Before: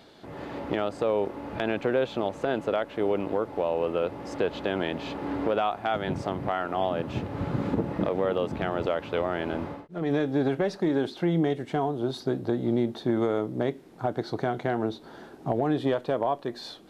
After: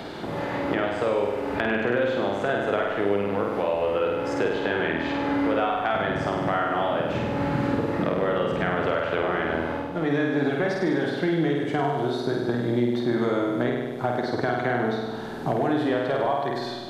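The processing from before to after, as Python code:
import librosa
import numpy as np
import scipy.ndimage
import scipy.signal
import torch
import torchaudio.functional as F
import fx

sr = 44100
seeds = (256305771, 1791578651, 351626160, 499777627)

y = fx.room_flutter(x, sr, wall_m=8.5, rt60_s=1.1)
y = fx.dynamic_eq(y, sr, hz=1700.0, q=1.4, threshold_db=-45.0, ratio=4.0, max_db=7)
y = fx.band_squash(y, sr, depth_pct=70)
y = y * librosa.db_to_amplitude(-1.5)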